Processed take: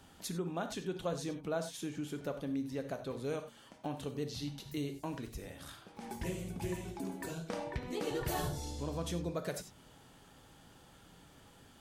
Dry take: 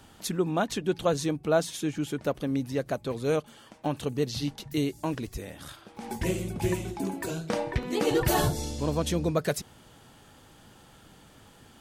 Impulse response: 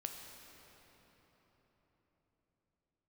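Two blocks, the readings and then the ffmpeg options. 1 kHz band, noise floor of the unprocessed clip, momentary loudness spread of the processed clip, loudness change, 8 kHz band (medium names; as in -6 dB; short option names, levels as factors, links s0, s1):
-10.0 dB, -55 dBFS, 21 LU, -10.5 dB, -9.5 dB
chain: -filter_complex "[1:a]atrim=start_sample=2205,afade=t=out:st=0.18:d=0.01,atrim=end_sample=8379,asetrate=57330,aresample=44100[s0];[0:a][s0]afir=irnorm=-1:irlink=0,acompressor=threshold=0.00708:ratio=1.5"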